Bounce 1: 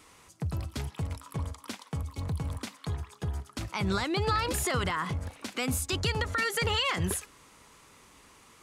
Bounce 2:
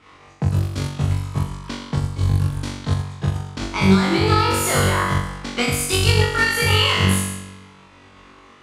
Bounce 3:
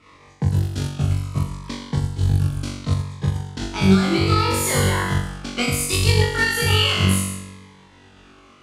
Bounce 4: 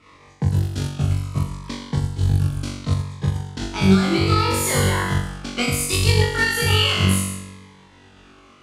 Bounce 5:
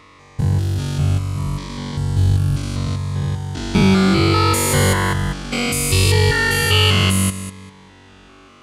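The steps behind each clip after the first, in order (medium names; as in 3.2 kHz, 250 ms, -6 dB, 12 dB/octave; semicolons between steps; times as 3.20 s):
flutter echo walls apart 3.6 m, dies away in 1.2 s; level-controlled noise filter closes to 3 kHz, open at -21.5 dBFS; transient shaper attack +7 dB, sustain -5 dB; trim +4 dB
Shepard-style phaser falling 0.68 Hz
no audible change
spectrogram pixelated in time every 200 ms; trim +5 dB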